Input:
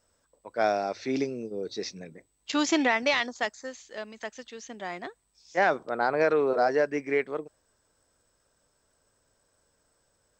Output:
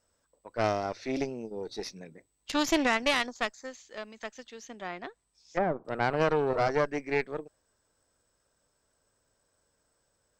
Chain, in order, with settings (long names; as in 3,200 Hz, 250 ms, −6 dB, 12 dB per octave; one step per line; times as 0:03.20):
harmonic generator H 4 −12 dB, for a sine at −11 dBFS
0:04.66–0:05.85: treble cut that deepens with the level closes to 920 Hz, closed at −23.5 dBFS
level −3.5 dB